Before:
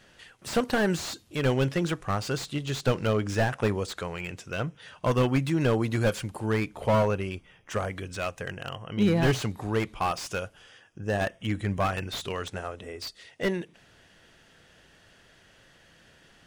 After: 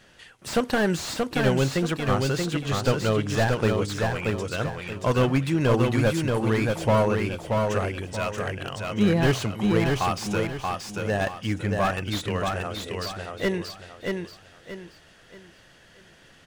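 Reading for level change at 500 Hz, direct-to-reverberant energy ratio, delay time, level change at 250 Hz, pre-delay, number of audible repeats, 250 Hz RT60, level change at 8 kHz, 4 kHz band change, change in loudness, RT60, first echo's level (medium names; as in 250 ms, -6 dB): +3.5 dB, no reverb, 630 ms, +4.0 dB, no reverb, 4, no reverb, +4.0 dB, +4.0 dB, +3.5 dB, no reverb, -3.5 dB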